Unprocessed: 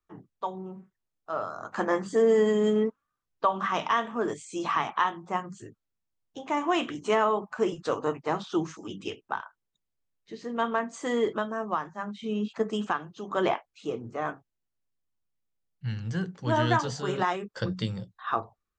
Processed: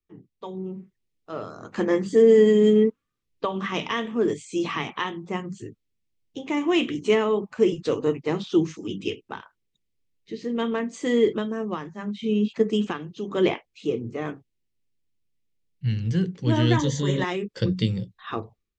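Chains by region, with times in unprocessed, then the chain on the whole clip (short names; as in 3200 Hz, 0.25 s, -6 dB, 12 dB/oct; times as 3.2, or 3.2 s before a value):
16.77–17.24 ripple EQ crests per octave 1.1, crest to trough 13 dB + upward compressor, threshold -28 dBFS
whole clip: LPF 3800 Hz 6 dB/oct; band shelf 990 Hz -12.5 dB; AGC gain up to 7.5 dB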